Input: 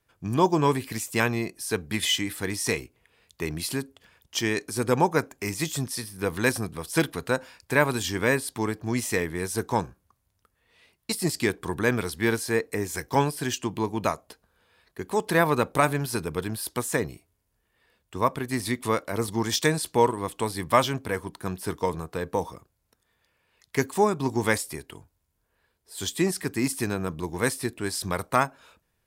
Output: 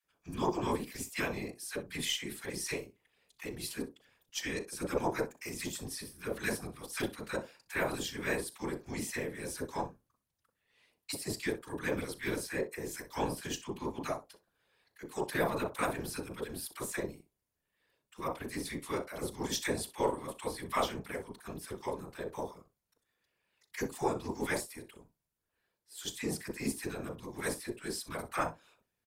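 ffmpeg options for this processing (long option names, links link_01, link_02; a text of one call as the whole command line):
ffmpeg -i in.wav -filter_complex "[0:a]lowshelf=frequency=120:gain=-9.5,acrossover=split=1100[link_01][link_02];[link_01]adelay=40[link_03];[link_03][link_02]amix=inputs=2:normalize=0,afftfilt=real='hypot(re,im)*cos(2*PI*random(0))':imag='hypot(re,im)*sin(2*PI*random(1))':win_size=512:overlap=0.75,asplit=2[link_04][link_05];[link_05]aecho=0:1:37|62:0.133|0.15[link_06];[link_04][link_06]amix=inputs=2:normalize=0,aeval=exprs='0.237*(cos(1*acos(clip(val(0)/0.237,-1,1)))-cos(1*PI/2))+0.00841*(cos(4*acos(clip(val(0)/0.237,-1,1)))-cos(4*PI/2))':channel_layout=same,volume=-3dB" out.wav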